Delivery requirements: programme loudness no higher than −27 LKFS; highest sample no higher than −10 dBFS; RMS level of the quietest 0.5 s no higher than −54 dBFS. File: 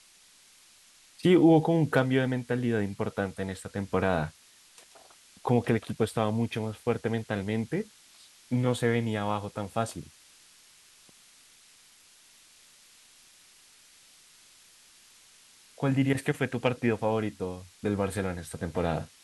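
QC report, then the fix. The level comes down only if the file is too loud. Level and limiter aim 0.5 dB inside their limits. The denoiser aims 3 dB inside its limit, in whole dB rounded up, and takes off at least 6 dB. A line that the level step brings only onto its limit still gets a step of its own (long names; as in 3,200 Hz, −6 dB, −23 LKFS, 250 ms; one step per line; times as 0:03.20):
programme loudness −28.5 LKFS: in spec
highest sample −9.0 dBFS: out of spec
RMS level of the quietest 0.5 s −58 dBFS: in spec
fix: brickwall limiter −10.5 dBFS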